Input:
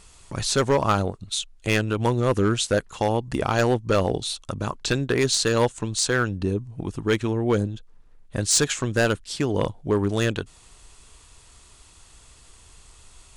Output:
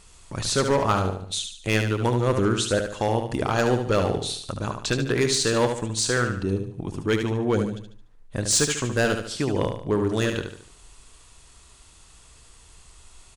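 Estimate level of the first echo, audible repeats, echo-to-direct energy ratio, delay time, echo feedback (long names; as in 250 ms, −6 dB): −6.5 dB, 4, −5.5 dB, 73 ms, 41%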